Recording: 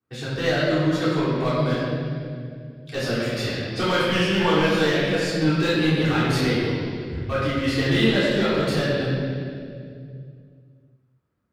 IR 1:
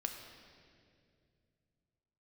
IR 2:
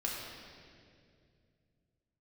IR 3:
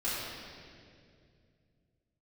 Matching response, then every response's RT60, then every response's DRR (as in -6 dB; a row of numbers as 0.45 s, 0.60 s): 3; 2.3 s, 2.3 s, 2.3 s; 3.0 dB, -4.5 dB, -13.0 dB